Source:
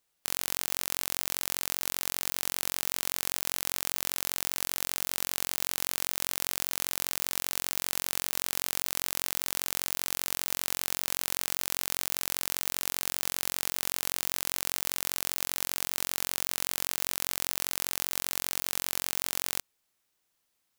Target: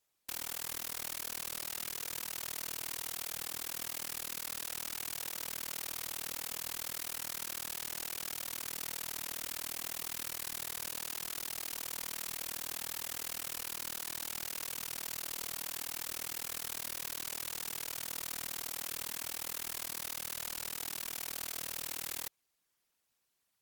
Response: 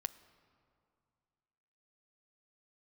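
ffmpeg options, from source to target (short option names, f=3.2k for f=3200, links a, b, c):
-af "asetrate=38808,aresample=44100,asoftclip=type=tanh:threshold=-8dB,afftfilt=real='hypot(re,im)*cos(2*PI*random(0))':imag='hypot(re,im)*sin(2*PI*random(1))':win_size=512:overlap=0.75,volume=2dB"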